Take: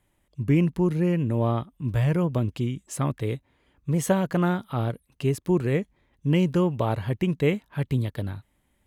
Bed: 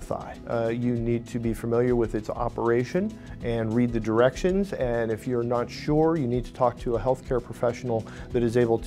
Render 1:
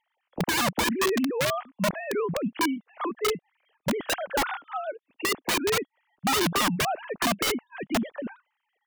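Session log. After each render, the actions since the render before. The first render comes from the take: sine-wave speech; wrapped overs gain 19.5 dB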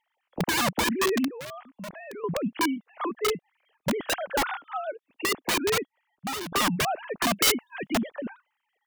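1.28–2.24 compressor 3:1, threshold -41 dBFS; 5.76–6.52 fade out, to -14.5 dB; 7.36–7.93 high shelf 2500 Hz +8.5 dB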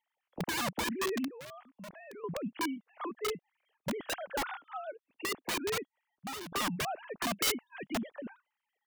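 gain -8.5 dB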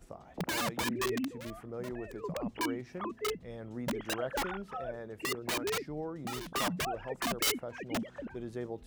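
add bed -17.5 dB

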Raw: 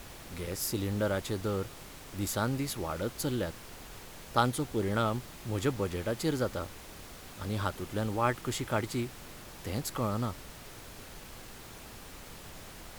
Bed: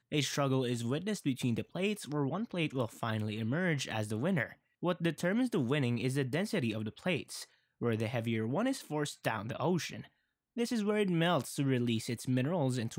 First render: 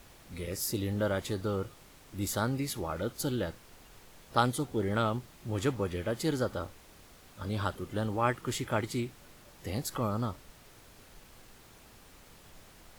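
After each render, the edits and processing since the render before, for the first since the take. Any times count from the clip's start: noise print and reduce 8 dB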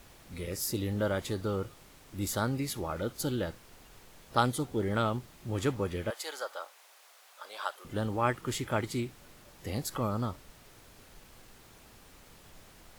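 6.1–7.85 HPF 620 Hz 24 dB/oct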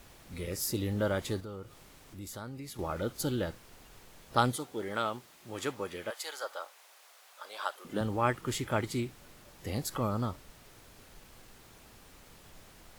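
1.4–2.79 compressor 2:1, threshold -48 dBFS; 4.56–6.44 HPF 580 Hz 6 dB/oct; 7.59–8.01 resonant low shelf 140 Hz -13 dB, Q 1.5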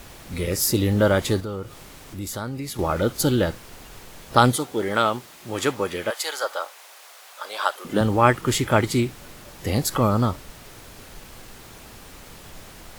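gain +12 dB; limiter -1 dBFS, peak gain reduction 2.5 dB

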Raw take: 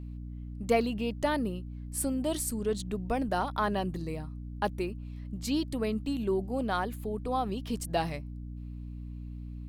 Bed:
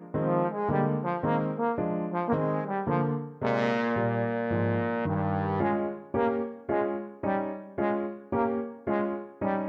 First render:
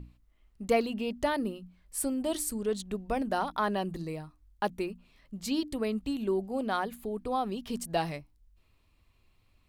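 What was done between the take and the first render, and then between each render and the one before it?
notches 60/120/180/240/300 Hz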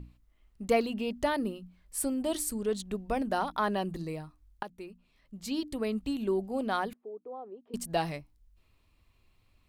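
4.63–5.99 fade in linear, from -15 dB; 6.93–7.74 ladder band-pass 490 Hz, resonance 45%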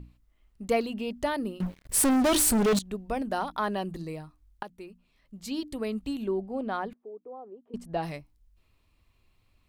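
1.6–2.79 sample leveller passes 5; 6.26–8.02 LPF 2000 Hz -> 1100 Hz 6 dB/oct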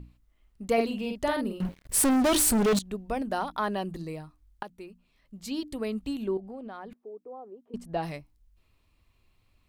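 0.73–1.69 doubler 48 ms -5 dB; 6.37–7.15 compressor, threshold -37 dBFS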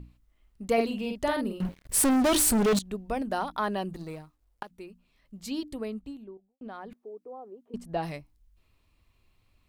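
3.93–4.71 G.711 law mismatch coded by A; 5.46–6.61 studio fade out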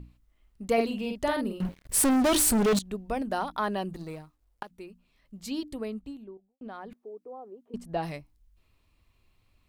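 nothing audible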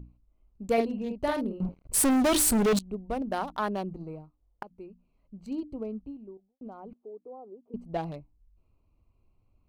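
Wiener smoothing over 25 samples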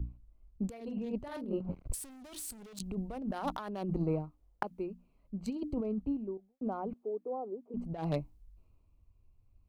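negative-ratio compressor -38 dBFS, ratio -1; three-band expander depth 40%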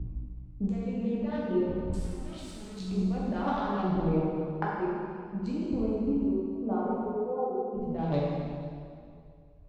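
air absorption 150 m; plate-style reverb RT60 2.3 s, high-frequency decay 0.85×, DRR -7 dB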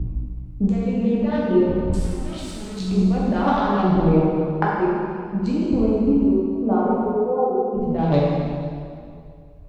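gain +10.5 dB

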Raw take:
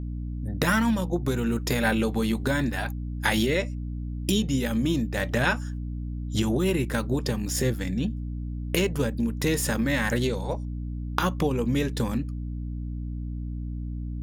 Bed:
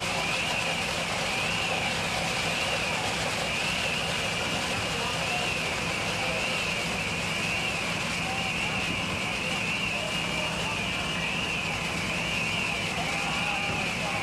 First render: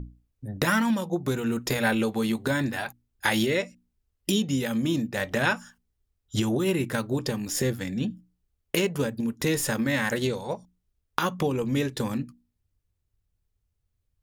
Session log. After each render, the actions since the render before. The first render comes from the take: notches 60/120/180/240/300 Hz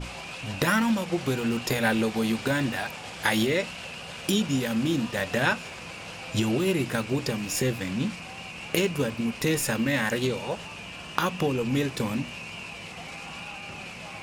add bed -10.5 dB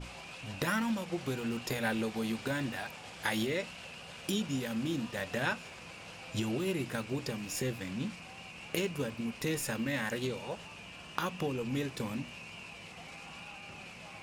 gain -8.5 dB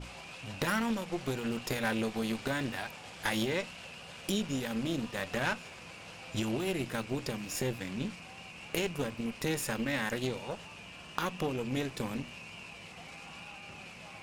added harmonics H 6 -19 dB, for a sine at -17.5 dBFS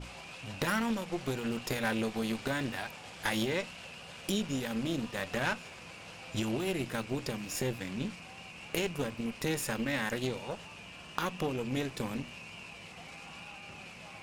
nothing audible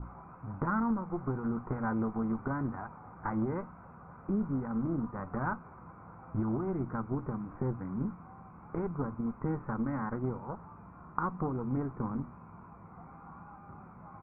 steep low-pass 1500 Hz 48 dB/oct; comb 0.9 ms, depth 55%

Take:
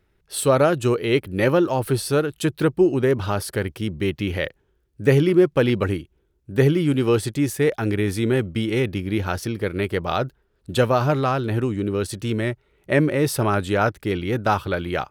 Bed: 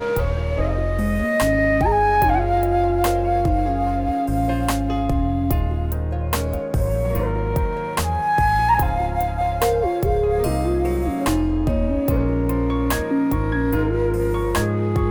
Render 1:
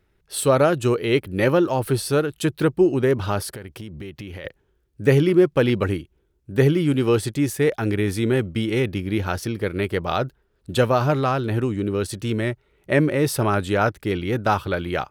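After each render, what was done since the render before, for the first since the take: 3.51–4.45 compressor 12:1, threshold -31 dBFS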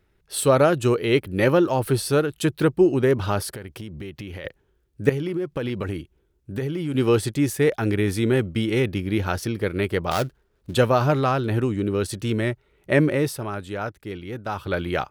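5.09–6.95 compressor 8:1, threshold -23 dBFS; 10.11–10.74 switching dead time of 0.15 ms; 13.14–14.77 dip -9.5 dB, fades 0.24 s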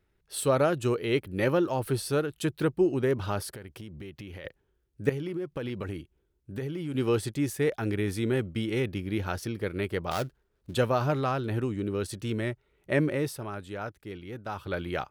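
gain -7 dB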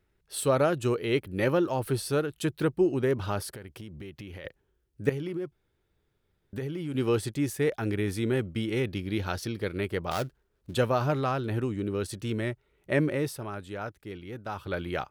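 5.52–6.53 room tone; 8.86–9.78 bell 4100 Hz +6 dB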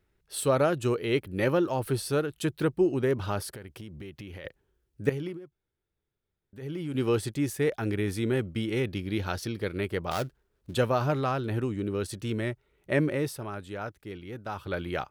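5.27–6.71 dip -11.5 dB, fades 0.13 s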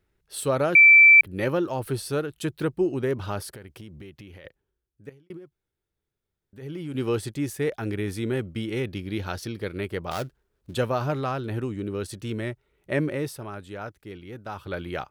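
0.75–1.21 bleep 2330 Hz -9 dBFS; 3.89–5.3 fade out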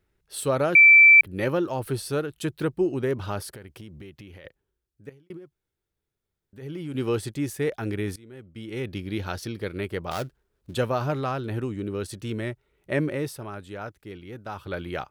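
8.16–8.94 fade in quadratic, from -21.5 dB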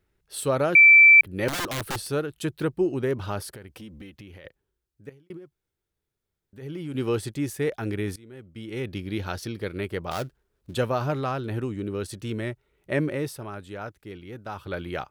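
1.48–2.1 wrapped overs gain 24 dB; 3.72–4.16 comb 3.9 ms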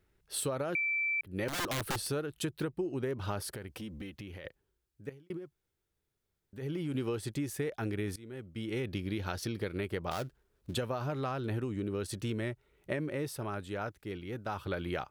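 limiter -15.5 dBFS, peak gain reduction 6.5 dB; compressor 10:1, threshold -31 dBFS, peak gain reduction 13 dB

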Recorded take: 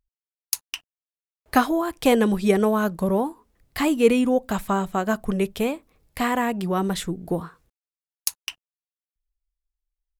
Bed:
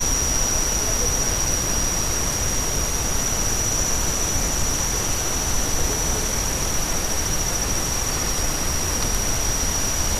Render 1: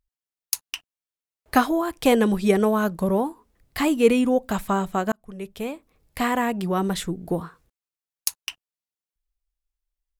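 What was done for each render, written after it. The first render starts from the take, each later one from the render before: 5.12–6.18 fade in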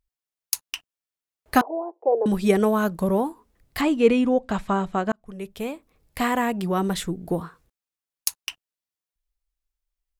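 1.61–2.26 elliptic band-pass 380–870 Hz, stop band 70 dB; 3.81–5.26 air absorption 86 m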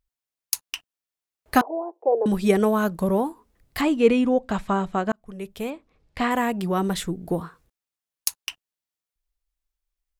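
5.7–6.31 LPF 4900 Hz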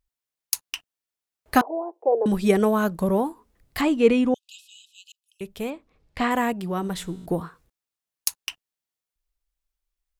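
4.34–5.41 brick-wall FIR high-pass 2500 Hz; 6.53–7.26 resonator 60 Hz, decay 1.9 s, mix 40%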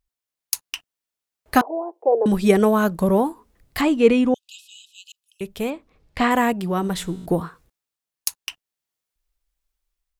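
AGC gain up to 4.5 dB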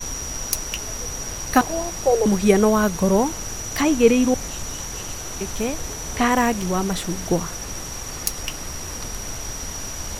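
add bed -8.5 dB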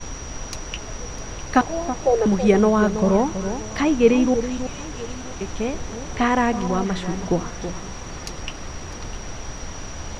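air absorption 140 m; echo with dull and thin repeats by turns 0.326 s, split 1200 Hz, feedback 55%, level -9.5 dB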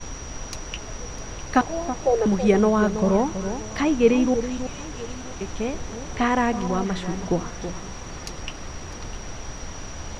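gain -2 dB

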